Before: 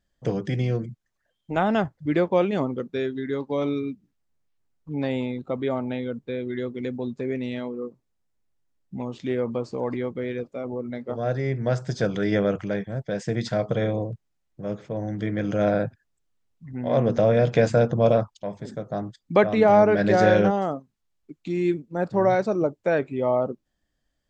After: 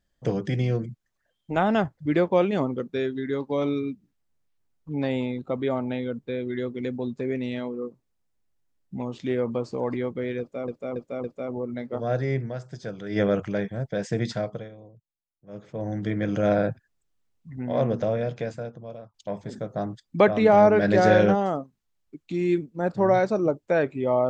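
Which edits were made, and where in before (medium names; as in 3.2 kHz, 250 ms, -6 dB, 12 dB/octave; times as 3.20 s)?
10.40–10.68 s: loop, 4 plays
11.56–12.37 s: dip -10.5 dB, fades 0.12 s
13.38–15.06 s: dip -20.5 dB, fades 0.47 s
16.76–18.30 s: fade out quadratic, to -23 dB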